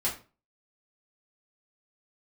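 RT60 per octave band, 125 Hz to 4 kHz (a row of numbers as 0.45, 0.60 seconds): 0.40, 0.40, 0.35, 0.35, 0.30, 0.25 seconds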